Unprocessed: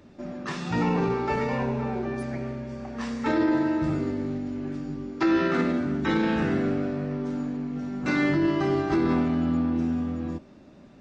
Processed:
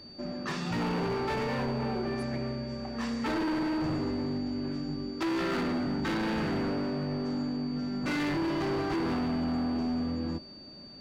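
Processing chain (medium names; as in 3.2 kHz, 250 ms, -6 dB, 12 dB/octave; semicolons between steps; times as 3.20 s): overload inside the chain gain 27 dB; whistle 4.6 kHz -47 dBFS; trim -1 dB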